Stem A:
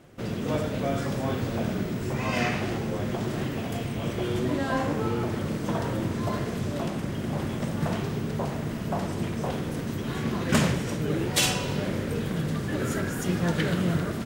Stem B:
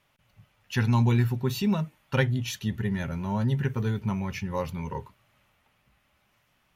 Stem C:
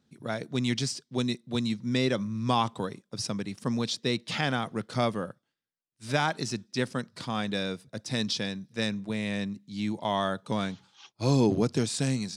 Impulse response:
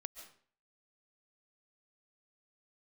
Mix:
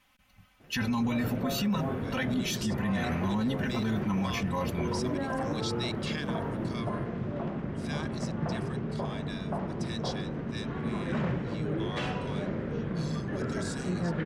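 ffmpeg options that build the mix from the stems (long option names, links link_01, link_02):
-filter_complex "[0:a]lowpass=1800,flanger=delay=4.3:depth=1.6:regen=-72:speed=0.69:shape=triangular,adelay=600,volume=0.5dB[link_01];[1:a]equalizer=frequency=490:width_type=o:width=0.75:gain=-7.5,aecho=1:1:3.9:0.84,volume=1dB,asplit=2[link_02][link_03];[2:a]highpass=1400,aecho=1:1:1.8:0.65,adelay=1750,volume=-4dB,afade=type=out:start_time=6.03:duration=0.24:silence=0.473151[link_04];[link_03]apad=whole_len=622750[link_05];[link_04][link_05]sidechaincompress=threshold=-28dB:ratio=8:attack=16:release=1060[link_06];[link_01][link_02][link_06]amix=inputs=3:normalize=0,alimiter=limit=-22dB:level=0:latency=1:release=19"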